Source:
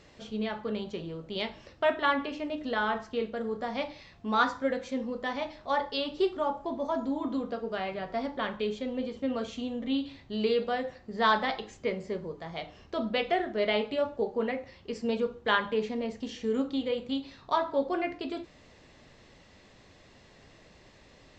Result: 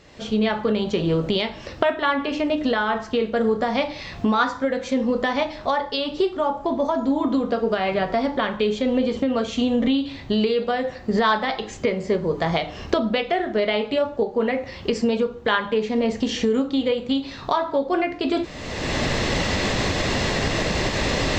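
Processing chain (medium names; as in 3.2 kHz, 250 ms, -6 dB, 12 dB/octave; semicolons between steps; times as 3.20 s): recorder AGC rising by 33 dB/s; trim +4.5 dB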